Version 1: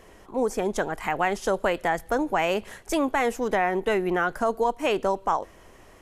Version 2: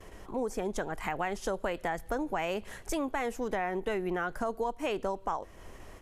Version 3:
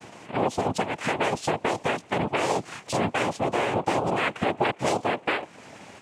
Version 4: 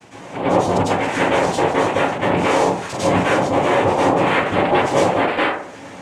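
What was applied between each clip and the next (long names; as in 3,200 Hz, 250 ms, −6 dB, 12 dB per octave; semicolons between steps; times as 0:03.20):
noise gate with hold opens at −41 dBFS; low-shelf EQ 120 Hz +7 dB; downward compressor 2 to 1, threshold −36 dBFS, peak gain reduction 10 dB
cochlear-implant simulation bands 4; level +7.5 dB
in parallel at −12 dB: asymmetric clip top −24 dBFS; on the sum: dense smooth reverb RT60 0.54 s, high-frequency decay 0.45×, pre-delay 90 ms, DRR −9.5 dB; level −3 dB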